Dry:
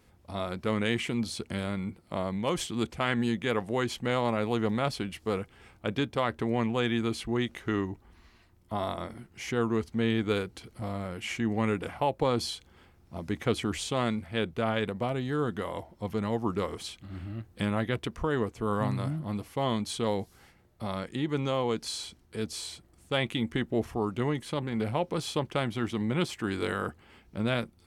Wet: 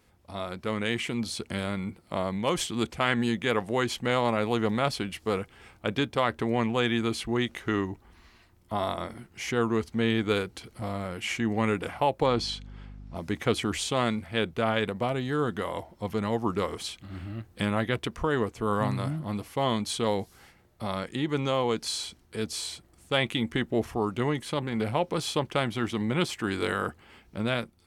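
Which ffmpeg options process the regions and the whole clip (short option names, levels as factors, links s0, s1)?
-filter_complex "[0:a]asettb=1/sr,asplit=3[s0][s1][s2];[s0]atrim=end=12.264[s3];[s1]atrim=start=12.26:end=13.15,asetpts=PTS-STARTPTS,afade=t=in:d=0.004:c=qsin,afade=t=out:st=0.886:d=0.004:c=qsin,lowpass=5600,aeval=exprs='val(0)+0.00708*(sin(2*PI*50*n/s)+sin(2*PI*2*50*n/s)/2+sin(2*PI*3*50*n/s)/3+sin(2*PI*4*50*n/s)/4+sin(2*PI*5*50*n/s)/5)':c=same[s4];[s2]atrim=start=13.146[s5];[s3][s4]acrossfade=d=0.004:c1=hsin:c2=qsin[s6];[s6][s5]acrossfade=d=0.004:c1=qsin:c2=hsin,dynaudnorm=f=780:g=3:m=1.58,lowshelf=f=480:g=-3.5"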